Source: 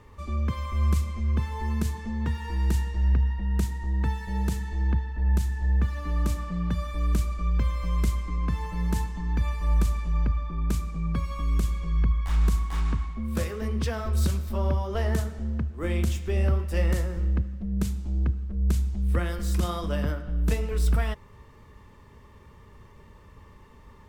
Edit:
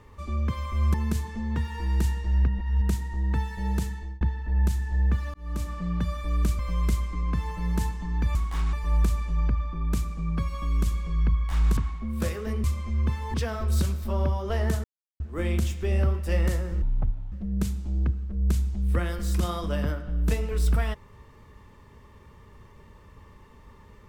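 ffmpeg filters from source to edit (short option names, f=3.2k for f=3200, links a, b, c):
-filter_complex "[0:a]asplit=16[a][b][c][d][e][f][g][h][i][j][k][l][m][n][o][p];[a]atrim=end=0.942[q];[b]atrim=start=1.638:end=3.182[r];[c]atrim=start=3.178:end=3.522,asetpts=PTS-STARTPTS,areverse[s];[d]atrim=start=3.518:end=4.91,asetpts=PTS-STARTPTS,afade=t=out:st=0.922:d=0.47:c=qsin[t];[e]atrim=start=4.91:end=6.04,asetpts=PTS-STARTPTS,afade=t=in:d=0.004:c=hsin,afade=t=out:st=1.126:d=0.004:c=hsin[u];[f]atrim=start=6.04:end=7.292,asetpts=PTS-STARTPTS,afade=t=in:d=0.58:c=qsin[v];[g]atrim=start=7.738:end=9.502[w];[h]atrim=start=12.538:end=12.922[x];[i]atrim=start=9.498:end=12.542[y];[j]atrim=start=12.918:end=13.792[z];[k]atrim=start=0.938:end=1.642[aa];[l]atrim=start=13.788:end=15.29,asetpts=PTS-STARTPTS,afade=t=out:st=1.498:d=0.004:c=hsin[ab];[m]atrim=start=15.29:end=15.65,asetpts=PTS-STARTPTS,volume=0[ac];[n]atrim=start=15.65:end=17.274,asetpts=PTS-STARTPTS,afade=t=in:d=0.004:c=hsin[ad];[o]atrim=start=17.27:end=17.52,asetpts=PTS-STARTPTS,asetrate=22050,aresample=44100[ae];[p]atrim=start=17.516[af];[q][r]acrossfade=d=0.004:c1=hsin:c2=hsin[ag];[ag][s]acrossfade=d=0.004:c1=hsin:c2=hsin[ah];[t][u][v]concat=n=3:v=0:a=1[ai];[ah][ai]acrossfade=d=0.004:c1=hsin:c2=hsin[aj];[aj][w]acrossfade=d=0.004:c1=hsin:c2=hsin[ak];[ak][x]acrossfade=d=0.004:c1=hsin:c2=hsin[al];[al][y]acrossfade=d=0.004:c1=hsin:c2=hsin[am];[am][z]acrossfade=d=0.004:c1=hsin:c2=hsin[an];[an][aa]acrossfade=d=0.004:c1=hsin:c2=hsin[ao];[ab][ac][ad]concat=n=3:v=0:a=1[ap];[ao][ap]acrossfade=d=0.004:c1=hsin:c2=hsin[aq];[aq][ae]acrossfade=d=0.004:c1=hsin:c2=hsin[ar];[ar][af]acrossfade=d=0.004:c1=hsin:c2=hsin"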